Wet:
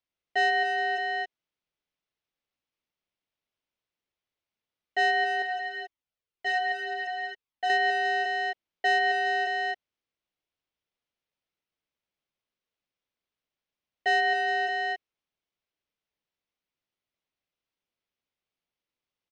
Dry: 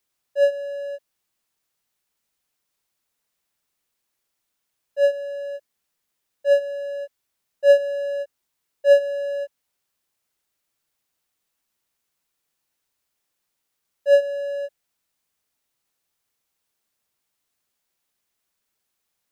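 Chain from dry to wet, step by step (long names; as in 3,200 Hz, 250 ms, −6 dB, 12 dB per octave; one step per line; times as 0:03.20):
elliptic band-pass filter 700–4,800 Hz
downward compressor 4 to 1, threshold −29 dBFS, peak gain reduction 9 dB
leveller curve on the samples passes 5
ring modulation 1,300 Hz
high-frequency loss of the air 110 metres
single-tap delay 273 ms −5.5 dB
0:05.42–0:07.70: flanger whose copies keep moving one way falling 1.9 Hz
level +6 dB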